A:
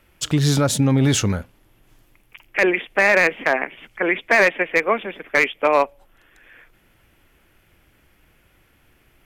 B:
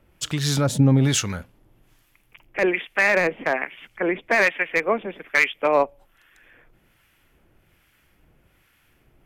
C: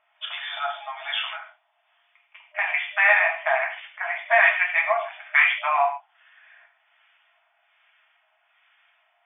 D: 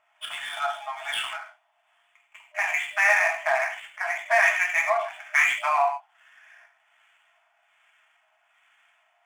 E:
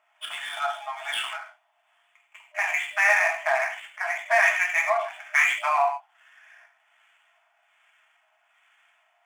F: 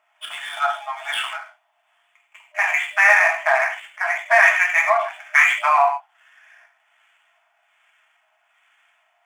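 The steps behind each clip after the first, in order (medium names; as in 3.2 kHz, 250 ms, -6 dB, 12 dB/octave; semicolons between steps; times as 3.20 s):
peaking EQ 150 Hz +3 dB 0.77 oct; harmonic tremolo 1.2 Hz, depth 70%, crossover 1 kHz
FFT band-pass 610–3600 Hz; gated-style reverb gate 180 ms falling, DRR -1.5 dB; trim -1.5 dB
median filter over 9 samples; in parallel at -2.5 dB: peak limiter -17.5 dBFS, peak gain reduction 11.5 dB; on the sum: trim -4 dB
high-pass 170 Hz 12 dB/octave
dynamic bell 1.3 kHz, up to +6 dB, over -34 dBFS, Q 0.74; trim +2 dB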